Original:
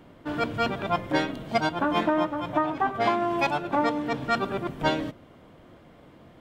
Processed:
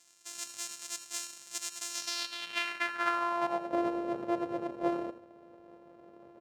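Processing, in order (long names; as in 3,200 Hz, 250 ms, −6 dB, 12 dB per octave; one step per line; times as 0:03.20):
samples sorted by size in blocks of 128 samples
in parallel at −1.5 dB: downward compressor, threshold −33 dBFS, peak gain reduction 14 dB
on the sum: band-pass filter sweep 7,100 Hz → 520 Hz, 0:01.88–0:03.79
single-tap delay 82 ms −13.5 dB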